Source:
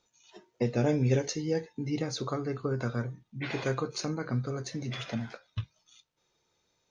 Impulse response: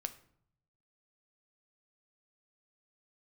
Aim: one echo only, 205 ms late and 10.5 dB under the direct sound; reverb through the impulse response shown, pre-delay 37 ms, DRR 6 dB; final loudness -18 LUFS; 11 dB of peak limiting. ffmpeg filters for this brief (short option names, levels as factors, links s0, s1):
-filter_complex "[0:a]alimiter=level_in=1.12:limit=0.0631:level=0:latency=1,volume=0.891,aecho=1:1:205:0.299,asplit=2[s0][s1];[1:a]atrim=start_sample=2205,adelay=37[s2];[s1][s2]afir=irnorm=-1:irlink=0,volume=0.562[s3];[s0][s3]amix=inputs=2:normalize=0,volume=6.68"